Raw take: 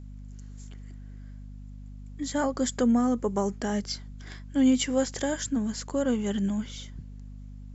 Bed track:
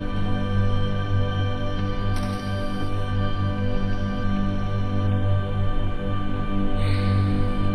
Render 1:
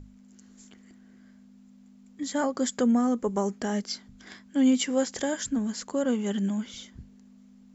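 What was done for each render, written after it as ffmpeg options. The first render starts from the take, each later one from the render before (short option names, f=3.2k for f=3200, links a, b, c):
-af "bandreject=f=50:t=h:w=6,bandreject=f=100:t=h:w=6,bandreject=f=150:t=h:w=6"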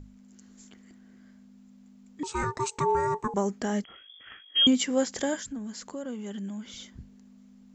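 -filter_complex "[0:a]asettb=1/sr,asplit=3[a][b][c];[a]atrim=end=2.234[d];[b]atrim=start=2.23:end=3.34,asetpts=PTS-STARTPTS,afade=t=in:d=0.004:c=qsin,afade=t=out:st=1.106:d=0.004:c=qsin,aeval=exprs='val(0)*sin(2*PI*650*n/s)':c=same[e];[c]atrim=start=3.336[f];[d][e]acrossfade=d=0.004:c1=hsin:c2=qsin[g];[g][f]acrossfade=d=0.004:c1=qsin:c2=hsin,asettb=1/sr,asplit=3[h][i][j];[h]atrim=end=3.844[k];[i]atrim=start=3.84:end=4.67,asetpts=PTS-STARTPTS,afade=t=in:d=0.004:c=qsin,afade=t=out:st=0.826:d=0.004:c=qsin,lowpass=f=3k:t=q:w=0.5098,lowpass=f=3k:t=q:w=0.6013,lowpass=f=3k:t=q:w=0.9,lowpass=f=3k:t=q:w=2.563,afreqshift=-3500[l];[j]atrim=start=4.666[m];[k][l]acrossfade=d=0.004:c1=hsin:c2=qsin[n];[n][m]acrossfade=d=0.004:c1=qsin:c2=hsin,asettb=1/sr,asplit=3[o][p][q];[o]atrim=end=5.394[r];[p]atrim=start=5.39:end=6.8,asetpts=PTS-STARTPTS,afade=t=in:d=0.004:c=qsin,afade=t=out:st=1.406:d=0.004:c=qsin,acompressor=threshold=-40dB:ratio=2:attack=3.2:release=140:knee=1:detection=peak[s];[q]atrim=start=6.796[t];[r][s]acrossfade=d=0.004:c1=hsin:c2=qsin[u];[u][t]acrossfade=d=0.004:c1=qsin:c2=hsin"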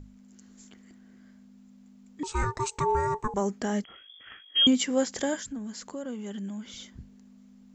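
-filter_complex "[0:a]asplit=3[a][b][c];[a]afade=t=out:st=2.26:d=0.02[d];[b]asubboost=boost=6:cutoff=83,afade=t=in:st=2.26:d=0.02,afade=t=out:st=3.4:d=0.02[e];[c]afade=t=in:st=3.4:d=0.02[f];[d][e][f]amix=inputs=3:normalize=0"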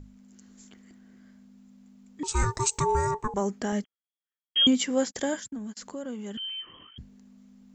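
-filter_complex "[0:a]asettb=1/sr,asplit=3[a][b][c];[a]atrim=end=2.284[d];[b]atrim=start=2.28:end=3.11,asetpts=PTS-STARTPTS,afade=t=in:d=0.004:c=qsin,afade=t=out:st=0.826:d=0.004:c=qsin,bass=f=250:g=4,treble=f=4k:g=11[e];[c]atrim=start=3.106[f];[d][e]acrossfade=d=0.004:c1=hsin:c2=qsin[g];[g][f]acrossfade=d=0.004:c1=qsin:c2=hsin,asettb=1/sr,asplit=3[h][i][j];[h]atrim=end=3.724[k];[i]atrim=start=3.72:end=5.77,asetpts=PTS-STARTPTS,afade=t=in:d=0.004:c=qsin,afade=t=out:st=2.046:d=0.004:c=qsin,agate=range=-53dB:threshold=-40dB:ratio=16:release=100:detection=peak[l];[j]atrim=start=5.766[m];[k][l]acrossfade=d=0.004:c1=hsin:c2=qsin[n];[n][m]acrossfade=d=0.004:c1=qsin:c2=hsin,asettb=1/sr,asplit=3[o][p][q];[o]atrim=end=6.374[r];[p]atrim=start=6.37:end=6.98,asetpts=PTS-STARTPTS,afade=t=in:d=0.004:c=qsin,afade=t=out:st=0.606:d=0.004:c=qsin,lowpass=f=2.8k:t=q:w=0.5098,lowpass=f=2.8k:t=q:w=0.6013,lowpass=f=2.8k:t=q:w=0.9,lowpass=f=2.8k:t=q:w=2.563,afreqshift=-3300[s];[q]atrim=start=6.976[t];[r][s]acrossfade=d=0.004:c1=hsin:c2=qsin[u];[u][t]acrossfade=d=0.004:c1=qsin:c2=hsin"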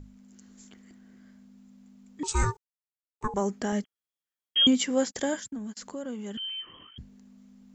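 -filter_complex "[0:a]asplit=3[a][b][c];[a]atrim=end=2.57,asetpts=PTS-STARTPTS,afade=t=out:st=2.566:d=0.004:c=hsin[d];[b]atrim=start=2.57:end=3.21,asetpts=PTS-STARTPTS,volume=0[e];[c]atrim=start=3.21,asetpts=PTS-STARTPTS,afade=t=in:d=0.004:c=hsin[f];[d][e][f]concat=n=3:v=0:a=1"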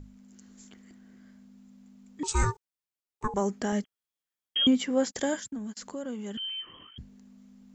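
-filter_complex "[0:a]asettb=1/sr,asplit=3[a][b][c];[a]atrim=end=4.574[d];[b]atrim=start=4.57:end=5.04,asetpts=PTS-STARTPTS,afade=t=in:d=0.004:c=qsin,afade=t=out:st=0.466:d=0.004:c=qsin,highshelf=f=3.7k:g=-11[e];[c]atrim=start=5.036[f];[d][e]acrossfade=d=0.004:c1=hsin:c2=qsin[g];[g][f]acrossfade=d=0.004:c1=qsin:c2=hsin"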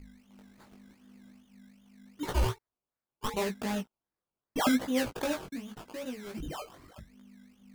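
-af "acrusher=samples=19:mix=1:aa=0.000001:lfo=1:lforange=11.4:lforate=2.6,flanger=delay=15.5:depth=6.2:speed=0.82"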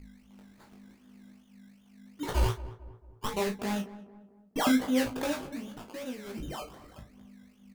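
-filter_complex "[0:a]asplit=2[a][b];[b]adelay=35,volume=-8.5dB[c];[a][c]amix=inputs=2:normalize=0,asplit=2[d][e];[e]adelay=223,lowpass=f=1.2k:p=1,volume=-15dB,asplit=2[f][g];[g]adelay=223,lowpass=f=1.2k:p=1,volume=0.48,asplit=2[h][i];[i]adelay=223,lowpass=f=1.2k:p=1,volume=0.48,asplit=2[j][k];[k]adelay=223,lowpass=f=1.2k:p=1,volume=0.48[l];[d][f][h][j][l]amix=inputs=5:normalize=0"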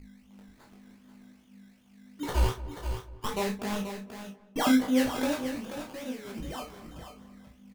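-filter_complex "[0:a]asplit=2[a][b];[b]adelay=31,volume=-8dB[c];[a][c]amix=inputs=2:normalize=0,aecho=1:1:483:0.355"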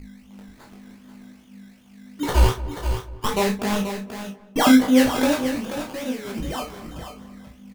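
-af "volume=9dB"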